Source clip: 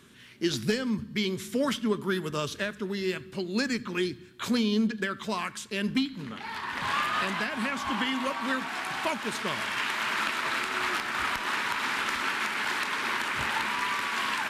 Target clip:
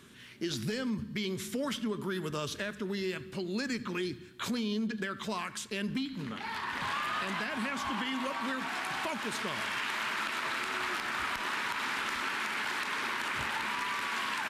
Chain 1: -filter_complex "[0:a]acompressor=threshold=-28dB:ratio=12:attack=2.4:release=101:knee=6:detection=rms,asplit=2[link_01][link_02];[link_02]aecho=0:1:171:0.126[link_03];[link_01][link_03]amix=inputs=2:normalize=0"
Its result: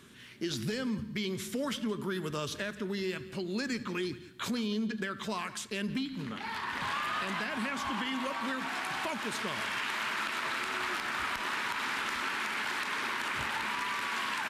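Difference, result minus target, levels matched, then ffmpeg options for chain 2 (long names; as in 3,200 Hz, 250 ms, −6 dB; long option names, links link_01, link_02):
echo-to-direct +11.5 dB
-filter_complex "[0:a]acompressor=threshold=-28dB:ratio=12:attack=2.4:release=101:knee=6:detection=rms,asplit=2[link_01][link_02];[link_02]aecho=0:1:171:0.0335[link_03];[link_01][link_03]amix=inputs=2:normalize=0"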